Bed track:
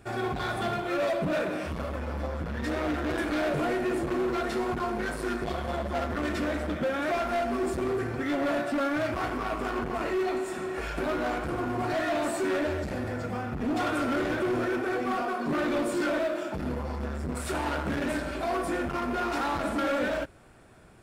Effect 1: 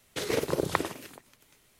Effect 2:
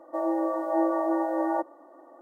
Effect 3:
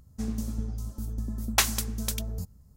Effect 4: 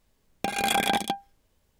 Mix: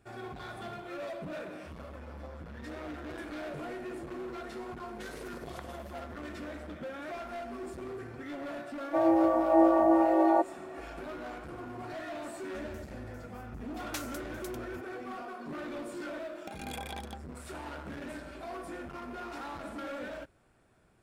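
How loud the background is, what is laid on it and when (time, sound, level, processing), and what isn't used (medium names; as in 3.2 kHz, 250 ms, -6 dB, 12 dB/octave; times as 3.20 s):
bed track -12 dB
4.84 s: add 1 -13.5 dB + compression 2:1, threshold -32 dBFS
8.80 s: add 2 + small resonant body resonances 250/700 Hz, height 10 dB
12.36 s: add 3 -17 dB
16.03 s: add 4 -17.5 dB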